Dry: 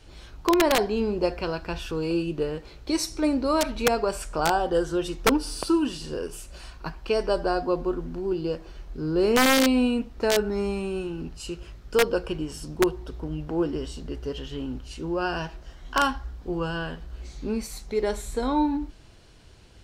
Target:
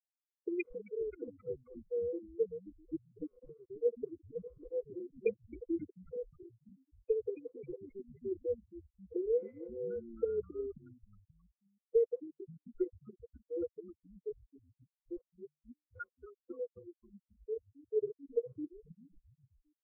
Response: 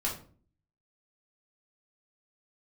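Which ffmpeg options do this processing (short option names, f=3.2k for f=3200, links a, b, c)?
-filter_complex "[0:a]asplit=3[a][b][c];[a]bandpass=f=530:t=q:w=8,volume=0dB[d];[b]bandpass=f=1.84k:t=q:w=8,volume=-6dB[e];[c]bandpass=f=2.48k:t=q:w=8,volume=-9dB[f];[d][e][f]amix=inputs=3:normalize=0,dynaudnorm=f=130:g=5:m=16.5dB,lowshelf=f=460:g=-8,aeval=exprs='0.596*(cos(1*acos(clip(val(0)/0.596,-1,1)))-cos(1*PI/2))+0.0168*(cos(3*acos(clip(val(0)/0.596,-1,1)))-cos(3*PI/2))+0.0168*(cos(6*acos(clip(val(0)/0.596,-1,1)))-cos(6*PI/2))+0.0473*(cos(7*acos(clip(val(0)/0.596,-1,1)))-cos(7*PI/2))':c=same,highshelf=f=4.7k:g=-4,acompressor=threshold=-31dB:ratio=2.5,afftfilt=real='re*gte(hypot(re,im),0.141)':imag='im*gte(hypot(re,im),0.141)':win_size=1024:overlap=0.75,asplit=5[g][h][i][j][k];[h]adelay=266,afreqshift=-150,volume=-20.5dB[l];[i]adelay=532,afreqshift=-300,volume=-25.7dB[m];[j]adelay=798,afreqshift=-450,volume=-30.9dB[n];[k]adelay=1064,afreqshift=-600,volume=-36.1dB[o];[g][l][m][n][o]amix=inputs=5:normalize=0,afftfilt=real='re*eq(mod(floor(b*sr/1024/500),2),0)':imag='im*eq(mod(floor(b*sr/1024/500),2),0)':win_size=1024:overlap=0.75,volume=2dB"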